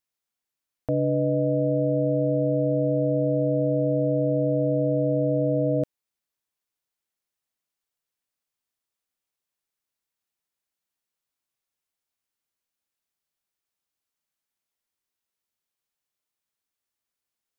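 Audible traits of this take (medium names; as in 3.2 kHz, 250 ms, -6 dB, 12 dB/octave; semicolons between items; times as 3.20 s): noise floor -87 dBFS; spectral tilt -1.0 dB/octave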